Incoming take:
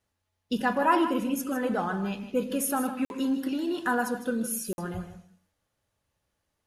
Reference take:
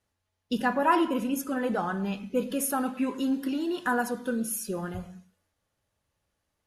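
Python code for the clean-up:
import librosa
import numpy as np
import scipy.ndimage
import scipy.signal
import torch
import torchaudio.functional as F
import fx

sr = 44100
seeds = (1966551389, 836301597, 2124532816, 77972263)

y = fx.fix_interpolate(x, sr, at_s=(3.05, 4.73), length_ms=51.0)
y = fx.fix_echo_inverse(y, sr, delay_ms=156, level_db=-11.5)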